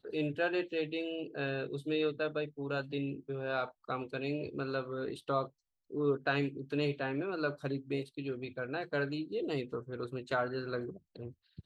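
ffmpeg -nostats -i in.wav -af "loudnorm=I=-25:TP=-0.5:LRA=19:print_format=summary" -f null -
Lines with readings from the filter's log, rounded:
Input Integrated:    -36.4 LUFS
Input True Peak:     -17.9 dBTP
Input LRA:             2.6 LU
Input Threshold:     -46.7 LUFS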